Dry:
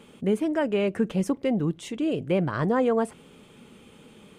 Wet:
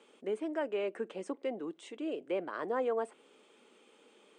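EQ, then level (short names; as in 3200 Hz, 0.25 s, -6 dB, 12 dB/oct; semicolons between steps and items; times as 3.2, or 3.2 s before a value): HPF 320 Hz 24 dB/oct; Chebyshev low-pass 8800 Hz, order 5; dynamic EQ 5800 Hz, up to -7 dB, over -57 dBFS, Q 1.3; -8.0 dB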